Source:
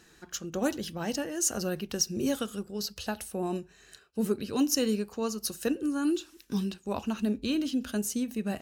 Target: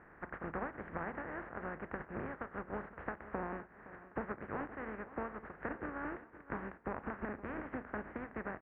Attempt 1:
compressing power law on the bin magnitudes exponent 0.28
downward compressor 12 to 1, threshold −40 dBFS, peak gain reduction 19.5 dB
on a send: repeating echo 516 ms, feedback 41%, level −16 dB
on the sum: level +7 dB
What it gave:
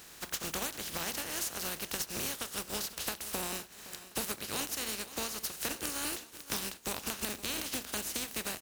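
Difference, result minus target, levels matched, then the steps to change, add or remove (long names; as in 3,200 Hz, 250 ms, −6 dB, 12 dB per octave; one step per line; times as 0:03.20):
2,000 Hz band −4.5 dB
add after downward compressor: Butterworth low-pass 1,900 Hz 48 dB per octave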